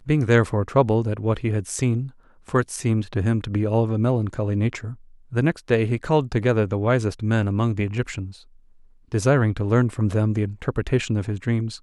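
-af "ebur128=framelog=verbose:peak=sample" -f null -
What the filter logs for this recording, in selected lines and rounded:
Integrated loudness:
  I:         -22.5 LUFS
  Threshold: -33.0 LUFS
Loudness range:
  LRA:         1.4 LU
  Threshold: -43.3 LUFS
  LRA low:   -23.8 LUFS
  LRA high:  -22.5 LUFS
Sample peak:
  Peak:       -4.0 dBFS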